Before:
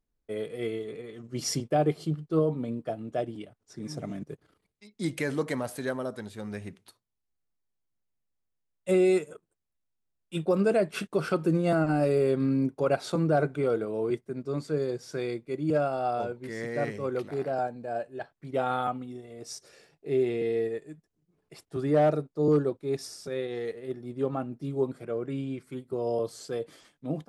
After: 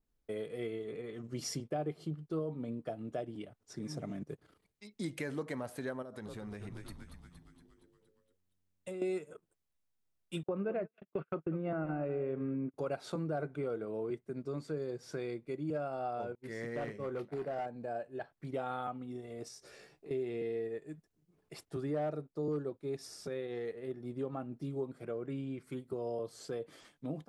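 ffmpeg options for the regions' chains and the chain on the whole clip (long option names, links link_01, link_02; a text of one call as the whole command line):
ffmpeg -i in.wav -filter_complex "[0:a]asettb=1/sr,asplit=3[link_01][link_02][link_03];[link_01]atrim=end=6.024[link_04];[link_02]atrim=start=6.02:end=9.02,asetpts=PTS-STARTPTS,afade=type=in:duration=0.004:curve=qsin,afade=type=out:start_time=2.996:duration=0.004:curve=qsin,asplit=8[link_05][link_06][link_07][link_08][link_09][link_10][link_11][link_12];[link_06]adelay=233,afreqshift=-92,volume=-10dB[link_13];[link_07]adelay=466,afreqshift=-184,volume=-14.7dB[link_14];[link_08]adelay=699,afreqshift=-276,volume=-19.5dB[link_15];[link_09]adelay=932,afreqshift=-368,volume=-24.2dB[link_16];[link_10]adelay=1165,afreqshift=-460,volume=-28.9dB[link_17];[link_11]adelay=1398,afreqshift=-552,volume=-33.7dB[link_18];[link_12]adelay=1631,afreqshift=-644,volume=-38.4dB[link_19];[link_05][link_13][link_14][link_15][link_16][link_17][link_18][link_19]amix=inputs=8:normalize=0,atrim=end_sample=132300,acompressor=threshold=-39dB:ratio=6:attack=3.2:release=140:knee=1:detection=peak[link_20];[link_03]atrim=start=9.016[link_21];[link_04][link_20]acrossfade=duration=0.004:curve1=hsin:curve2=qsin[link_22];[link_22][link_21]acrossfade=duration=0.004:curve1=qsin:curve2=hsin,asettb=1/sr,asplit=3[link_23][link_24][link_25];[link_23]atrim=end=10.434[link_26];[link_24]atrim=start=10.43:end=12.74,asetpts=PTS-STARTPTS,afade=type=in:duration=0.004:curve=qsin,afade=type=out:start_time=2.306:duration=0.004:curve=qsin,lowpass=frequency=2700:width=0.5412,lowpass=frequency=2700:width=1.3066,aecho=1:1:198:0.188,atrim=end_sample=101871,agate=range=-42dB:threshold=-30dB:ratio=16:release=100:detection=peak[link_27];[link_25]atrim=start=12.736[link_28];[link_26][link_27]acrossfade=duration=0.004:curve1=hsin:curve2=qsin[link_29];[link_29][link_28]acrossfade=duration=0.004:curve1=qsin:curve2=hsin,asettb=1/sr,asplit=3[link_30][link_31][link_32];[link_30]atrim=end=16.354[link_33];[link_31]atrim=start=16.35:end=17.66,asetpts=PTS-STARTPTS,afade=type=in:duration=0.004:curve=qsin,afade=type=out:start_time=1.306:duration=0.004:curve=qsin,agate=range=-33dB:threshold=-34dB:ratio=3:release=100:detection=peak,volume=25.5dB,asoftclip=hard,volume=-25.5dB,asplit=2[link_34][link_35];[link_35]adelay=25,volume=-12dB[link_36];[link_34][link_36]amix=inputs=2:normalize=0,atrim=end_sample=57771[link_37];[link_32]atrim=start=17.656[link_38];[link_33][link_37]acrossfade=duration=0.004:curve1=hsin:curve2=qsin[link_39];[link_39][link_38]acrossfade=duration=0.004:curve1=qsin:curve2=hsin,asettb=1/sr,asplit=3[link_40][link_41][link_42];[link_40]atrim=end=19.484[link_43];[link_41]atrim=start=19.48:end=20.11,asetpts=PTS-STARTPTS,afade=type=in:duration=0.004:curve=qsin,afade=type=out:start_time=0.626:duration=0.004:curve=qsin,acompressor=threshold=-50dB:ratio=3:attack=3.2:release=140:knee=1:detection=peak,asplit=2[link_44][link_45];[link_45]adelay=16,volume=-4dB[link_46];[link_44][link_46]amix=inputs=2:normalize=0,atrim=end_sample=27783[link_47];[link_42]atrim=start=20.106[link_48];[link_43][link_47]acrossfade=duration=0.004:curve1=hsin:curve2=qsin[link_49];[link_49][link_48]acrossfade=duration=0.004:curve1=qsin:curve2=hsin,acompressor=threshold=-39dB:ratio=2.5,adynamicequalizer=threshold=0.00112:dfrequency=3200:dqfactor=0.7:tfrequency=3200:tqfactor=0.7:attack=5:release=100:ratio=0.375:range=3.5:mode=cutabove:tftype=highshelf" out.wav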